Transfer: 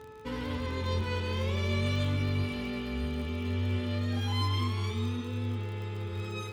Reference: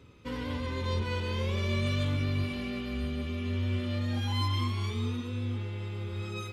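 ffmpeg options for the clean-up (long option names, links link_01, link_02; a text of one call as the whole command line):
ffmpeg -i in.wav -af "adeclick=threshold=4,bandreject=frequency=434.4:width_type=h:width=4,bandreject=frequency=868.8:width_type=h:width=4,bandreject=frequency=1303.2:width_type=h:width=4,bandreject=frequency=1737.6:width_type=h:width=4" out.wav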